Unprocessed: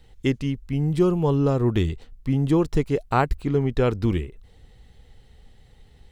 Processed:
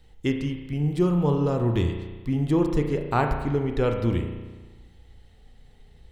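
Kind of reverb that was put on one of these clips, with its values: spring tank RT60 1.3 s, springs 34 ms, chirp 55 ms, DRR 4 dB; gain -3 dB

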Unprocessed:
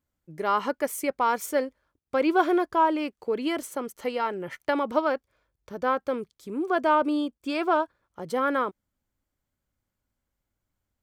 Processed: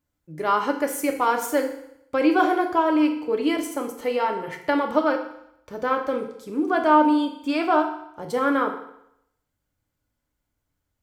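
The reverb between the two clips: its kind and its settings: FDN reverb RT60 0.76 s, low-frequency decay 0.95×, high-frequency decay 0.95×, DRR 3 dB; gain +1.5 dB

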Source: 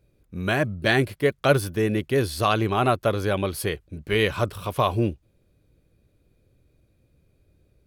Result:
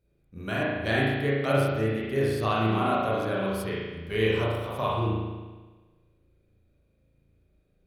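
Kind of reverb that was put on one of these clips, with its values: spring tank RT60 1.3 s, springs 36 ms, chirp 35 ms, DRR -6 dB; gain -10.5 dB

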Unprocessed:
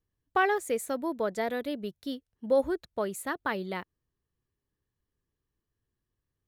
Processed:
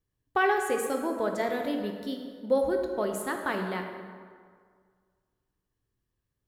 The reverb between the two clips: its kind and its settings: plate-style reverb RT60 1.9 s, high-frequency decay 0.6×, DRR 3 dB

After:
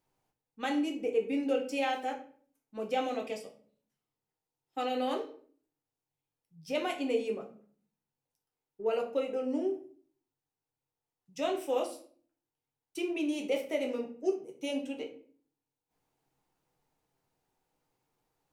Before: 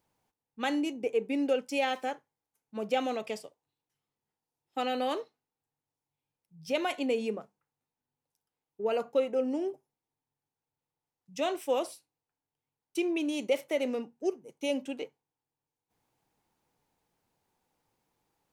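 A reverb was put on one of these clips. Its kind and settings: shoebox room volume 48 m³, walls mixed, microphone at 0.51 m; gain -4.5 dB

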